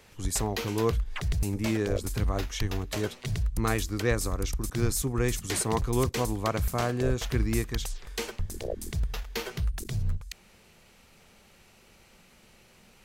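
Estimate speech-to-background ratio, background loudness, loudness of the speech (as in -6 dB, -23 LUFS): 3.5 dB, -34.5 LUFS, -31.0 LUFS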